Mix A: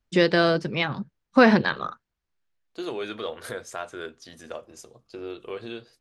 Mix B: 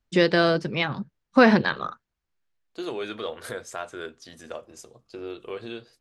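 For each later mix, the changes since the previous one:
second voice: remove notch 7700 Hz, Q 18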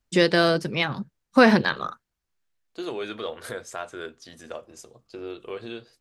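first voice: remove air absorption 87 m

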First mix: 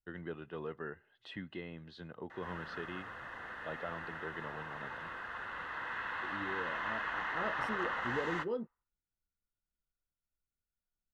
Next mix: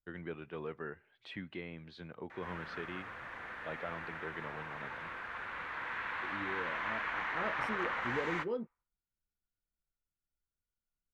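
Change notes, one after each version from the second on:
master: remove Butterworth band-stop 2300 Hz, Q 5.8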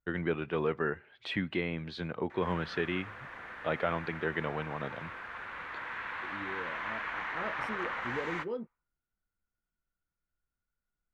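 first voice +11.0 dB

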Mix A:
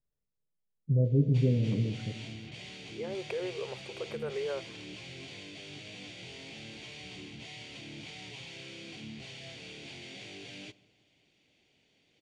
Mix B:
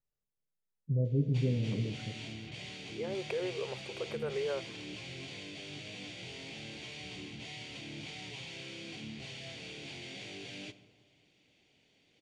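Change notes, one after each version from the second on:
first voice -4.5 dB; background: send +6.5 dB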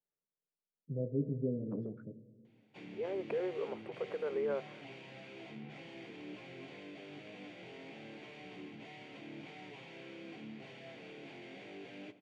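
background: entry +1.40 s; master: add three-band isolator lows -21 dB, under 170 Hz, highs -19 dB, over 2100 Hz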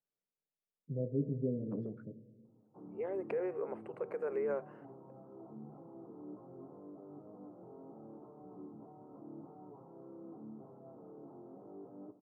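background: add rippled Chebyshev low-pass 1300 Hz, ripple 3 dB

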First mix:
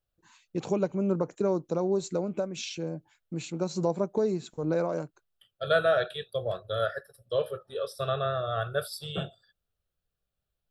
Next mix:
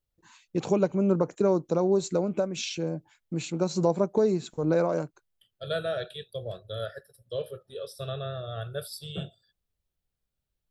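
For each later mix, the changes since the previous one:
first voice +3.5 dB; second voice: add bell 1100 Hz -12 dB 1.8 oct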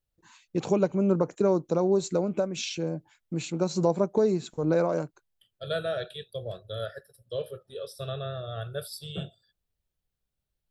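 none

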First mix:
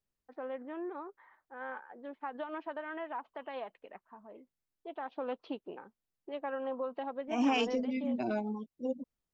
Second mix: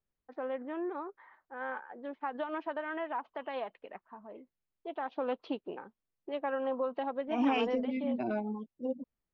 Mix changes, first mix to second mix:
first voice +3.5 dB; second voice: add LPF 2800 Hz 12 dB/oct

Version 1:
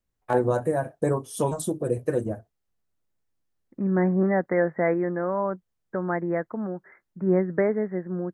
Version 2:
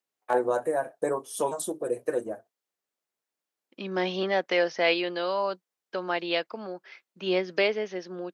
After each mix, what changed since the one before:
second voice: remove steep low-pass 2000 Hz 96 dB/oct; master: add HPF 420 Hz 12 dB/oct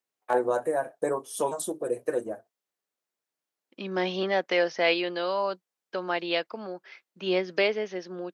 none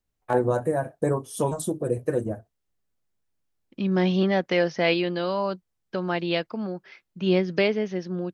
master: remove HPF 420 Hz 12 dB/oct

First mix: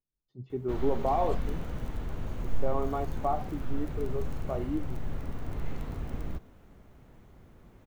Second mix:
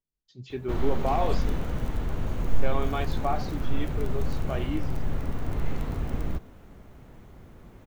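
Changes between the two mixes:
speech: remove polynomial smoothing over 65 samples; background +6.0 dB

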